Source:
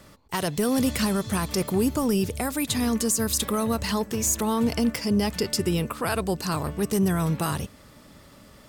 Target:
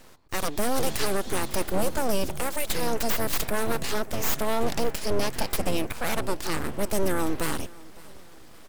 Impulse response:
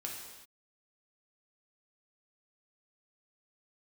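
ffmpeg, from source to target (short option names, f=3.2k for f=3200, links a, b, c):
-af "aeval=exprs='abs(val(0))':c=same,aecho=1:1:561|1122|1683:0.075|0.0352|0.0166,volume=1dB"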